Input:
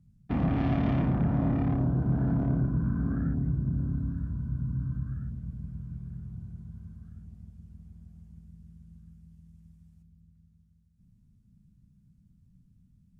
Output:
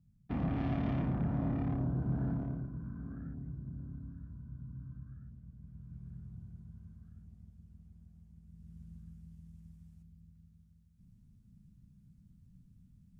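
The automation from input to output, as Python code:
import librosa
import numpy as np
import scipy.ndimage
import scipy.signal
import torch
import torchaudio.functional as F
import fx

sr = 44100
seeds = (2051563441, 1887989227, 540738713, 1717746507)

y = fx.gain(x, sr, db=fx.line((2.27, -7.0), (2.69, -14.5), (5.54, -14.5), (6.07, -7.5), (8.4, -7.5), (8.8, 0.5)))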